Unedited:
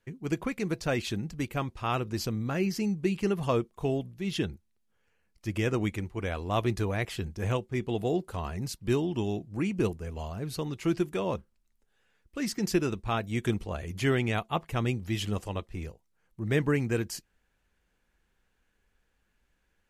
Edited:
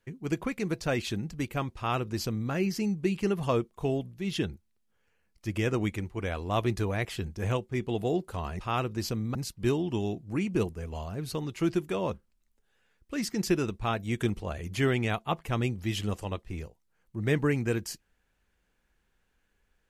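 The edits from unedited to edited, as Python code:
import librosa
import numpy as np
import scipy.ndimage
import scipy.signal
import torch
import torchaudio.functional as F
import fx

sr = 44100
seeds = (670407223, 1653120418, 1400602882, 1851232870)

y = fx.edit(x, sr, fx.duplicate(start_s=1.75, length_s=0.76, to_s=8.59), tone=tone)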